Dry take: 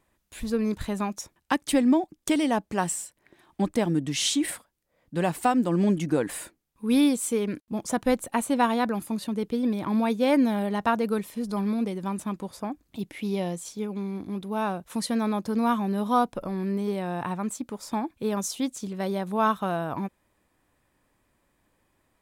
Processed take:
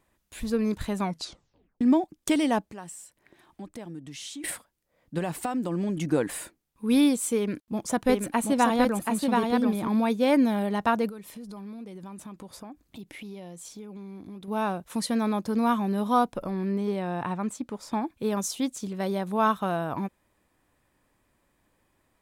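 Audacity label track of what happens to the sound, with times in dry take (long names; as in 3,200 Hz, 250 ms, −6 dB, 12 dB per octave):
1.000000	1.000000	tape stop 0.81 s
2.610000	4.440000	downward compressor 2 to 1, threshold −49 dBFS
5.180000	6.050000	downward compressor 12 to 1, threshold −24 dBFS
7.360000	9.880000	single-tap delay 729 ms −3 dB
11.090000	14.480000	downward compressor 5 to 1, threshold −39 dBFS
16.500000	18.020000	high-shelf EQ 8,100 Hz −9.5 dB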